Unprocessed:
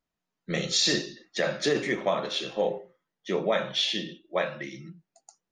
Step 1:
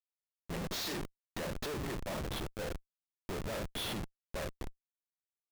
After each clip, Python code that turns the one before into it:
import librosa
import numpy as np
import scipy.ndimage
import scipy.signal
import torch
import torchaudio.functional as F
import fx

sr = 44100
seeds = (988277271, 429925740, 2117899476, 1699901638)

y = fx.schmitt(x, sr, flips_db=-28.5)
y = F.gain(torch.from_numpy(y), -7.5).numpy()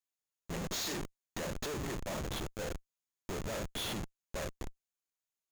y = fx.peak_eq(x, sr, hz=6700.0, db=9.0, octaves=0.2)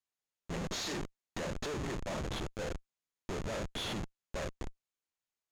y = fx.air_absorb(x, sr, metres=51.0)
y = F.gain(torch.from_numpy(y), 1.0).numpy()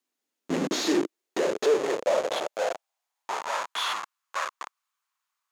y = fx.filter_sweep_highpass(x, sr, from_hz=270.0, to_hz=1100.0, start_s=0.57, end_s=3.87, q=4.0)
y = F.gain(torch.from_numpy(y), 8.0).numpy()